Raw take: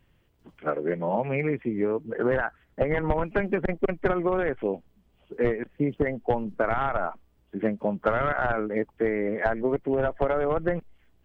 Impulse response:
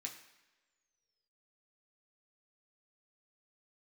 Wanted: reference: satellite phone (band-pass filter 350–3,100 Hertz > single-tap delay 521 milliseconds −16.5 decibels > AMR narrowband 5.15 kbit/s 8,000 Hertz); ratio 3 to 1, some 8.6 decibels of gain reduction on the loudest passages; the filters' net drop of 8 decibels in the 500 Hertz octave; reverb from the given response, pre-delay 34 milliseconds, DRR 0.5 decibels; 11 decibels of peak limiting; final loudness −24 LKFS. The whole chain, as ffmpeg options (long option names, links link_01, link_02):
-filter_complex "[0:a]equalizer=frequency=500:width_type=o:gain=-8.5,acompressor=threshold=-33dB:ratio=3,alimiter=level_in=6.5dB:limit=-24dB:level=0:latency=1,volume=-6.5dB,asplit=2[link_01][link_02];[1:a]atrim=start_sample=2205,adelay=34[link_03];[link_02][link_03]afir=irnorm=-1:irlink=0,volume=2.5dB[link_04];[link_01][link_04]amix=inputs=2:normalize=0,highpass=350,lowpass=3100,aecho=1:1:521:0.15,volume=19.5dB" -ar 8000 -c:a libopencore_amrnb -b:a 5150